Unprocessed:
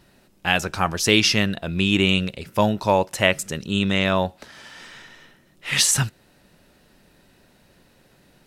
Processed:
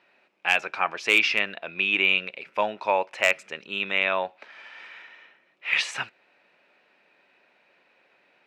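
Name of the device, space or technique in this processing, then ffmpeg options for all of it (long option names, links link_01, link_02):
megaphone: -af "highpass=560,lowpass=2600,equalizer=frequency=2400:width_type=o:width=0.33:gain=11,asoftclip=type=hard:threshold=-6.5dB,volume=-2.5dB"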